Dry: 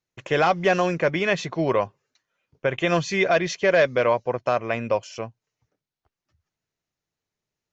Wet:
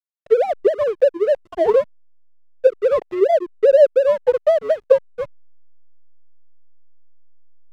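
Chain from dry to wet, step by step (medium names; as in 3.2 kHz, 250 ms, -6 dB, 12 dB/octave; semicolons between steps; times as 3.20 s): formants replaced by sine waves; low-pass 2.3 kHz 12 dB/octave; low-pass that closes with the level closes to 400 Hz, closed at -19 dBFS; high-order bell 670 Hz +13 dB; hysteresis with a dead band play -21 dBFS; trim -1 dB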